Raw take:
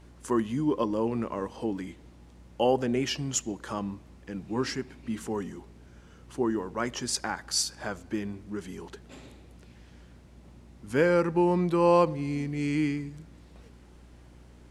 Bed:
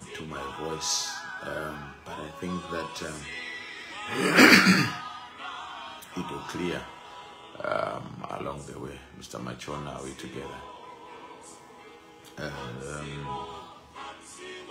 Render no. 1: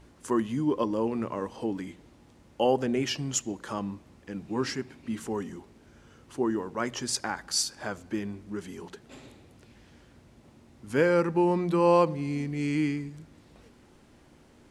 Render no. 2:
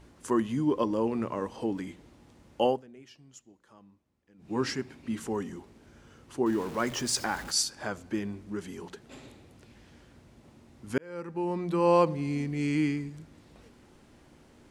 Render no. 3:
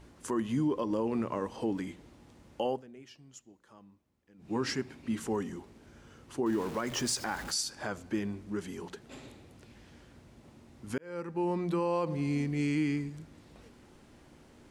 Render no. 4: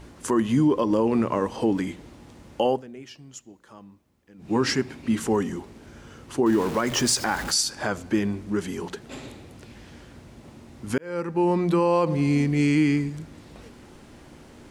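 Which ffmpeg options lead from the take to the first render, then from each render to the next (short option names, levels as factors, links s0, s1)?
-af "bandreject=f=60:t=h:w=4,bandreject=f=120:t=h:w=4,bandreject=f=180:t=h:w=4"
-filter_complex "[0:a]asettb=1/sr,asplit=3[s0][s1][s2];[s0]atrim=end=6.464[s3];[s1]atrim=start=6.46:end=7.51,asetpts=PTS-STARTPTS,afade=t=in:d=0.004:c=qsin,afade=t=out:st=1.046:d=0.004:c=qsin,aeval=exprs='val(0)+0.5*0.0126*sgn(val(0))':c=same[s4];[s2]atrim=start=7.506[s5];[s3][s4]acrossfade=d=0.004:c1=hsin:c2=qsin[s6];[s6][s5]acrossfade=d=0.004:c1=qsin:c2=hsin,asplit=4[s7][s8][s9][s10];[s7]atrim=end=2.82,asetpts=PTS-STARTPTS,afade=t=out:st=2.65:d=0.17:silence=0.0707946[s11];[s8]atrim=start=2.82:end=4.38,asetpts=PTS-STARTPTS,volume=0.0708[s12];[s9]atrim=start=4.38:end=10.98,asetpts=PTS-STARTPTS,afade=t=in:d=0.17:silence=0.0707946,afade=t=out:st=6.596:d=0.004:c=hsin[s13];[s10]atrim=start=10.98,asetpts=PTS-STARTPTS,afade=t=in:d=1.09[s14];[s11][s12][s13][s14]concat=n=4:v=0:a=1"
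-af "alimiter=limit=0.0841:level=0:latency=1:release=103"
-af "volume=2.99"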